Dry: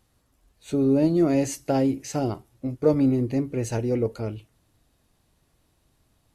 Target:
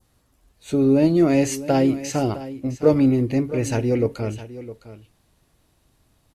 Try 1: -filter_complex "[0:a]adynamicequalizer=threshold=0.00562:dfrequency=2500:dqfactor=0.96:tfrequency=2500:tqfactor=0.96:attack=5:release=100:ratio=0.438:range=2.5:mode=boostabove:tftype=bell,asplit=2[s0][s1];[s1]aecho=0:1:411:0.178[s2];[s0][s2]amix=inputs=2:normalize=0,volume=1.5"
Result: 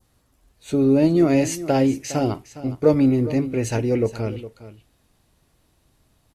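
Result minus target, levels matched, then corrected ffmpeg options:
echo 249 ms early
-filter_complex "[0:a]adynamicequalizer=threshold=0.00562:dfrequency=2500:dqfactor=0.96:tfrequency=2500:tqfactor=0.96:attack=5:release=100:ratio=0.438:range=2.5:mode=boostabove:tftype=bell,asplit=2[s0][s1];[s1]aecho=0:1:660:0.178[s2];[s0][s2]amix=inputs=2:normalize=0,volume=1.5"

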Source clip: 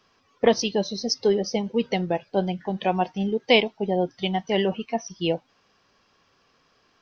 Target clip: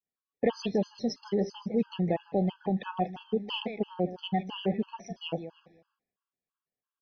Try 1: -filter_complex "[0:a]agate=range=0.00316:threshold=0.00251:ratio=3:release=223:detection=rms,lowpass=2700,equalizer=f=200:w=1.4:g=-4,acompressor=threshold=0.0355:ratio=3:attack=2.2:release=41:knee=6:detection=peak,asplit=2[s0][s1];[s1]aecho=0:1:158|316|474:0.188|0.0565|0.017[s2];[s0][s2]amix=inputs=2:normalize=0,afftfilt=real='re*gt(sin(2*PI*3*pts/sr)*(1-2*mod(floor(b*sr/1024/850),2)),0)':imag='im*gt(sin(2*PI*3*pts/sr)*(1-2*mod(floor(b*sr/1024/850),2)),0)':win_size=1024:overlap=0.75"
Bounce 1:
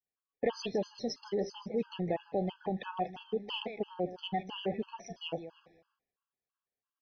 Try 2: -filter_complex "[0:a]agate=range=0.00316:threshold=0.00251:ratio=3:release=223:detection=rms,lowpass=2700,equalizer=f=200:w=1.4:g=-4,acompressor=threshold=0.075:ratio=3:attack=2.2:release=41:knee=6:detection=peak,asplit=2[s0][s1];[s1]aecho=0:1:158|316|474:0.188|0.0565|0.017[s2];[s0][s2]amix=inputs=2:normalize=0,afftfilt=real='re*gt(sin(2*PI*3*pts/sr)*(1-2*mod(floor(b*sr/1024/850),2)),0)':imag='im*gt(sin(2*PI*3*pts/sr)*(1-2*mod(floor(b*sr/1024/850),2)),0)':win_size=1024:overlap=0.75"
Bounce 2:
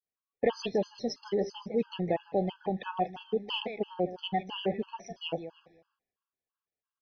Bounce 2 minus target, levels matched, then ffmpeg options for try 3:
250 Hz band -3.5 dB
-filter_complex "[0:a]agate=range=0.00316:threshold=0.00251:ratio=3:release=223:detection=rms,lowpass=2700,equalizer=f=200:w=1.4:g=3.5,acompressor=threshold=0.075:ratio=3:attack=2.2:release=41:knee=6:detection=peak,asplit=2[s0][s1];[s1]aecho=0:1:158|316|474:0.188|0.0565|0.017[s2];[s0][s2]amix=inputs=2:normalize=0,afftfilt=real='re*gt(sin(2*PI*3*pts/sr)*(1-2*mod(floor(b*sr/1024/850),2)),0)':imag='im*gt(sin(2*PI*3*pts/sr)*(1-2*mod(floor(b*sr/1024/850),2)),0)':win_size=1024:overlap=0.75"

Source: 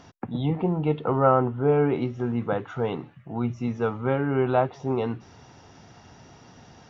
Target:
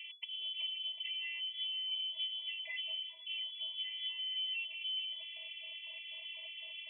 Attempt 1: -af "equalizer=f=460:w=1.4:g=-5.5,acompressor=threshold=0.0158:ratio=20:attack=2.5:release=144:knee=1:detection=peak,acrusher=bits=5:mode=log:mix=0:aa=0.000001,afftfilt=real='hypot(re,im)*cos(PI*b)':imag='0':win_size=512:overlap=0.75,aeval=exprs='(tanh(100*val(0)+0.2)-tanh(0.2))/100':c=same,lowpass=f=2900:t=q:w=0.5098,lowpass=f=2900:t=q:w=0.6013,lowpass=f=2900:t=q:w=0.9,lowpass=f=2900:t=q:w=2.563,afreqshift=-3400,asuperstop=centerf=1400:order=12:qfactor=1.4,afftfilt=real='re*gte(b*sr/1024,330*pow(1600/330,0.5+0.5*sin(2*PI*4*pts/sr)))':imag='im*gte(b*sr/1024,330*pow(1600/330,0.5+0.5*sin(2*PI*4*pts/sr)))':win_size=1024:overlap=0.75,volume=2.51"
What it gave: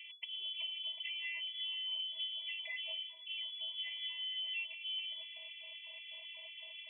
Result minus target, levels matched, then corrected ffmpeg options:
500 Hz band +4.0 dB
-af "equalizer=f=460:w=1.4:g=5,acompressor=threshold=0.0158:ratio=20:attack=2.5:release=144:knee=1:detection=peak,acrusher=bits=5:mode=log:mix=0:aa=0.000001,afftfilt=real='hypot(re,im)*cos(PI*b)':imag='0':win_size=512:overlap=0.75,aeval=exprs='(tanh(100*val(0)+0.2)-tanh(0.2))/100':c=same,lowpass=f=2900:t=q:w=0.5098,lowpass=f=2900:t=q:w=0.6013,lowpass=f=2900:t=q:w=0.9,lowpass=f=2900:t=q:w=2.563,afreqshift=-3400,asuperstop=centerf=1400:order=12:qfactor=1.4,afftfilt=real='re*gte(b*sr/1024,330*pow(1600/330,0.5+0.5*sin(2*PI*4*pts/sr)))':imag='im*gte(b*sr/1024,330*pow(1600/330,0.5+0.5*sin(2*PI*4*pts/sr)))':win_size=1024:overlap=0.75,volume=2.51"

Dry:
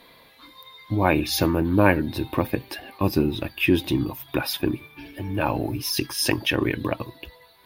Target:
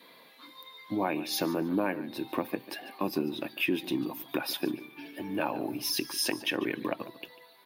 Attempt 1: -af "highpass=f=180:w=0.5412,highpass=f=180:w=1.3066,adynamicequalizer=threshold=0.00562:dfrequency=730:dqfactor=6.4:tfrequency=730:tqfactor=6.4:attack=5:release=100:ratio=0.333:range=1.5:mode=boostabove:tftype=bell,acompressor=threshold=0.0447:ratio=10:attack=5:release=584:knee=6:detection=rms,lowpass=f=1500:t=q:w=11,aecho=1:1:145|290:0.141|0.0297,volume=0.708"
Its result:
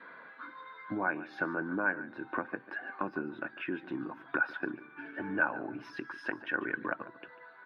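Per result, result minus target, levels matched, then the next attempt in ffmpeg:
2 kHz band +8.5 dB; compression: peak gain reduction +7.5 dB
-af "highpass=f=180:w=0.5412,highpass=f=180:w=1.3066,adynamicequalizer=threshold=0.00562:dfrequency=730:dqfactor=6.4:tfrequency=730:tqfactor=6.4:attack=5:release=100:ratio=0.333:range=1.5:mode=boostabove:tftype=bell,acompressor=threshold=0.0447:ratio=10:attack=5:release=584:knee=6:detection=rms,aecho=1:1:145|290:0.141|0.0297,volume=0.708"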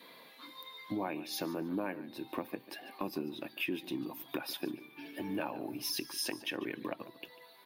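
compression: peak gain reduction +7.5 dB
-af "highpass=f=180:w=0.5412,highpass=f=180:w=1.3066,adynamicequalizer=threshold=0.00562:dfrequency=730:dqfactor=6.4:tfrequency=730:tqfactor=6.4:attack=5:release=100:ratio=0.333:range=1.5:mode=boostabove:tftype=bell,acompressor=threshold=0.119:ratio=10:attack=5:release=584:knee=6:detection=rms,aecho=1:1:145|290:0.141|0.0297,volume=0.708"

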